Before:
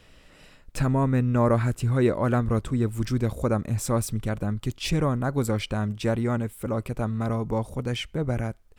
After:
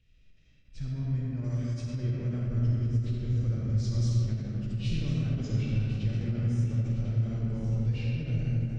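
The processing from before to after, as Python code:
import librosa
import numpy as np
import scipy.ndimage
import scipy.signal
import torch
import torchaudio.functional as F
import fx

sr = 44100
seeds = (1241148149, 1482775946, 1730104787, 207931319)

p1 = fx.freq_compress(x, sr, knee_hz=2200.0, ratio=1.5)
p2 = fx.curve_eq(p1, sr, hz=(110.0, 1000.0, 2600.0), db=(0, -27, -8))
p3 = p2 + fx.echo_feedback(p2, sr, ms=1052, feedback_pct=36, wet_db=-13.0, dry=0)
p4 = fx.rider(p3, sr, range_db=10, speed_s=2.0)
p5 = fx.riaa(p4, sr, side='recording', at=(1.44, 1.87))
p6 = fx.rev_freeverb(p5, sr, rt60_s=4.2, hf_ratio=0.45, predelay_ms=10, drr_db=-5.5)
p7 = fx.end_taper(p6, sr, db_per_s=130.0)
y = p7 * 10.0 ** (-6.0 / 20.0)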